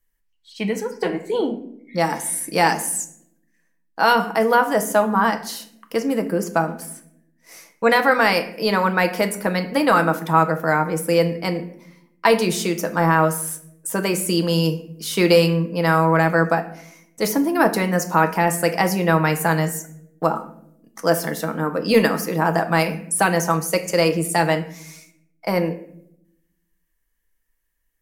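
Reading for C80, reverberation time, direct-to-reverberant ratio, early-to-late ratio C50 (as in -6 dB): 16.0 dB, 0.75 s, 6.5 dB, 12.5 dB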